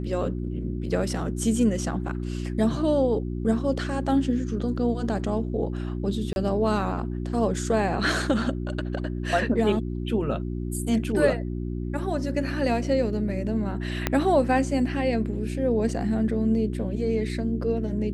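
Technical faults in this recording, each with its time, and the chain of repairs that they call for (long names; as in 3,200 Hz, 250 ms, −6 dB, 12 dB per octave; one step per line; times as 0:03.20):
mains hum 60 Hz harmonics 6 −30 dBFS
0:06.33–0:06.36: drop-out 31 ms
0:14.07: click −8 dBFS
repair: click removal
hum removal 60 Hz, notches 6
repair the gap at 0:06.33, 31 ms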